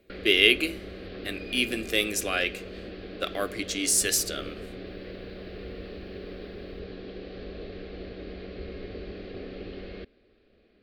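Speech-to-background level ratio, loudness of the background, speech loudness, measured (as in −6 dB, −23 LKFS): 16.0 dB, −40.5 LKFS, −24.5 LKFS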